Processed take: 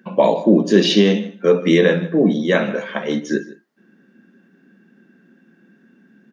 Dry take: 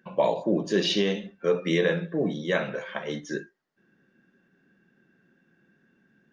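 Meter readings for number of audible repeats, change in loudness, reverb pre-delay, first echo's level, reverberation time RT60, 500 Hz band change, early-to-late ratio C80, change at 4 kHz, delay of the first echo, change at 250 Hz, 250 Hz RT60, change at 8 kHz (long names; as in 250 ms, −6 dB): 1, +10.5 dB, no reverb audible, −18.5 dB, no reverb audible, +9.5 dB, no reverb audible, +7.5 dB, 155 ms, +12.5 dB, no reverb audible, can't be measured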